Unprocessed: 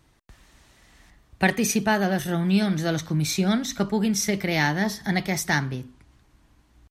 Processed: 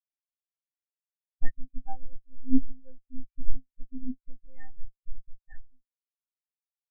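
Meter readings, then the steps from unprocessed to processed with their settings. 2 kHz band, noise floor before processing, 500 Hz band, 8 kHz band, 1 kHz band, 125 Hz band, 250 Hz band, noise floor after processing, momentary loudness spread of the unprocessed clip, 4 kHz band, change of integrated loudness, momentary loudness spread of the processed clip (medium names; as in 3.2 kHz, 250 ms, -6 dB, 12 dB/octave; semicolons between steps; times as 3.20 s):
-30.5 dB, -61 dBFS, under -35 dB, under -40 dB, -22.0 dB, under -15 dB, -13.0 dB, under -85 dBFS, 4 LU, under -40 dB, -14.0 dB, 26 LU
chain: monotone LPC vocoder at 8 kHz 260 Hz; spectral contrast expander 4:1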